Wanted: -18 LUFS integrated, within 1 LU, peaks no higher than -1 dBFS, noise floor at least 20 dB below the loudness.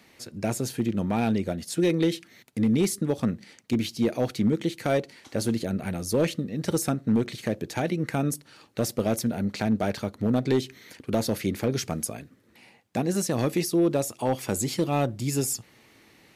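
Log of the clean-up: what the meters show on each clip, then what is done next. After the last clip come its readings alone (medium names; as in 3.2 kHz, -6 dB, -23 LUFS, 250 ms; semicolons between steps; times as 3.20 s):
clipped samples 0.6%; clipping level -15.5 dBFS; loudness -27.0 LUFS; peak level -15.5 dBFS; loudness target -18.0 LUFS
-> clip repair -15.5 dBFS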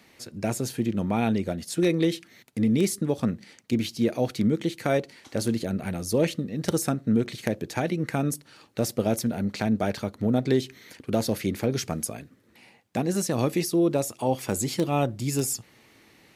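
clipped samples 0.0%; loudness -27.0 LUFS; peak level -6.5 dBFS; loudness target -18.0 LUFS
-> trim +9 dB; peak limiter -1 dBFS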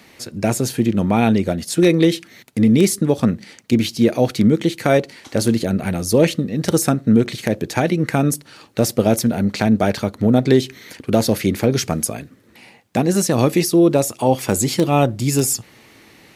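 loudness -18.0 LUFS; peak level -1.0 dBFS; noise floor -49 dBFS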